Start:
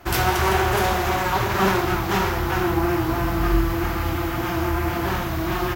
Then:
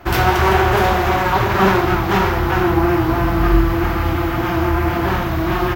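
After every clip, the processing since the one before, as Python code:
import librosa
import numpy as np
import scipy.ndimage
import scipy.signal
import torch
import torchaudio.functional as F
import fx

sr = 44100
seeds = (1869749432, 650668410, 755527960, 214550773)

y = fx.peak_eq(x, sr, hz=9600.0, db=-11.0, octaves=1.7)
y = y * 10.0 ** (6.0 / 20.0)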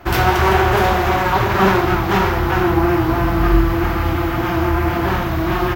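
y = x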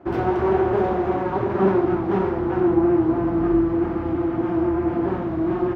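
y = fx.bandpass_q(x, sr, hz=320.0, q=1.2)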